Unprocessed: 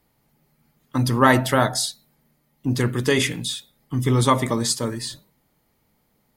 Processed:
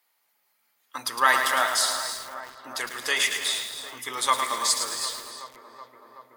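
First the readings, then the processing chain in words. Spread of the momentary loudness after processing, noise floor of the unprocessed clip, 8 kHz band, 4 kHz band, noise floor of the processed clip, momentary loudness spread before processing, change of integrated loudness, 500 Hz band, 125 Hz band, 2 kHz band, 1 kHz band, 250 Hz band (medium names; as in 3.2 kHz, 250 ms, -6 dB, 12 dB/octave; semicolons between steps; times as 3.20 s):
17 LU, -67 dBFS, +1.5 dB, +1.5 dB, -71 dBFS, 13 LU, -3.0 dB, -11.0 dB, -35.0 dB, +1.0 dB, -1.5 dB, -23.0 dB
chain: high-pass 1.1 kHz 12 dB/octave; filtered feedback delay 376 ms, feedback 82%, low-pass 2.1 kHz, level -13 dB; gated-style reverb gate 340 ms rising, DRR 9 dB; bit-crushed delay 109 ms, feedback 55%, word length 6-bit, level -6 dB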